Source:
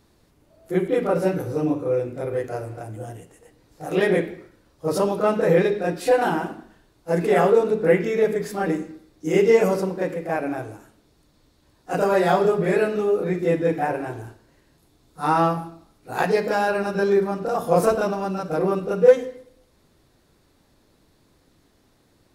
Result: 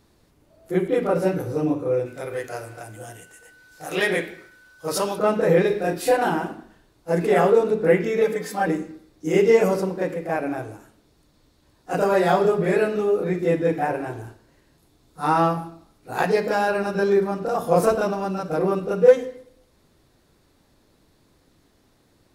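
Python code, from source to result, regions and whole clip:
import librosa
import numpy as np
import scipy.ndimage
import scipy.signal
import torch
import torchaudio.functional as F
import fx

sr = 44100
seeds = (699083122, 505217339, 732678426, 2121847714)

y = fx.dmg_tone(x, sr, hz=1500.0, level_db=-53.0, at=(2.05, 5.17), fade=0.02)
y = fx.tilt_shelf(y, sr, db=-7.0, hz=970.0, at=(2.05, 5.17), fade=0.02)
y = fx.chain(y, sr, fx.high_shelf(hz=11000.0, db=11.0),
    fx.doubler(ms=31.0, db=-7.5), at=(5.67, 6.17))
y = fx.chain(y, sr, fx.highpass(hz=150.0, slope=12),
    fx.peak_eq(hz=240.0, db=-8.5, octaves=0.43),
    fx.comb(ms=3.9, depth=0.83), at=(8.21, 8.66))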